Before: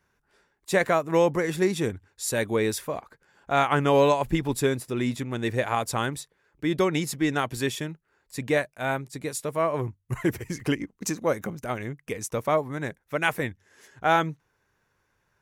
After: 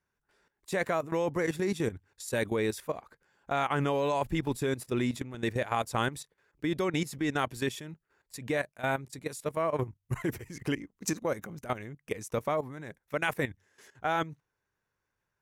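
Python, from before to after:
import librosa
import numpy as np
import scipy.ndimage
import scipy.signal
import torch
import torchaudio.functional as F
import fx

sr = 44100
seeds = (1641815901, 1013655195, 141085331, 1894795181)

y = fx.level_steps(x, sr, step_db=14)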